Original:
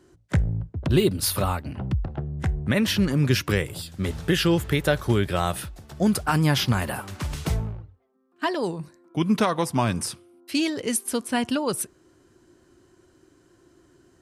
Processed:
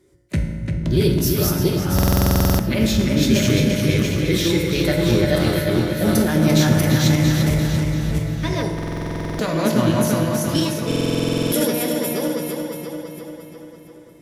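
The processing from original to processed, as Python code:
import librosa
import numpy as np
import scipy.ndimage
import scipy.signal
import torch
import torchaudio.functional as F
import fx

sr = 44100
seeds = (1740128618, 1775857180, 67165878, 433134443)

y = fx.reverse_delay_fb(x, sr, ms=341, feedback_pct=50, wet_db=-0.5)
y = fx.peak_eq(y, sr, hz=920.0, db=-9.0, octaves=1.5)
y = fx.rev_fdn(y, sr, rt60_s=1.6, lf_ratio=1.0, hf_ratio=0.65, size_ms=10.0, drr_db=2.5)
y = fx.formant_shift(y, sr, semitones=3)
y = fx.echo_filtered(y, sr, ms=344, feedback_pct=60, hz=4900.0, wet_db=-4.5)
y = fx.buffer_glitch(y, sr, at_s=(1.94, 8.74, 10.87), block=2048, repeats=13)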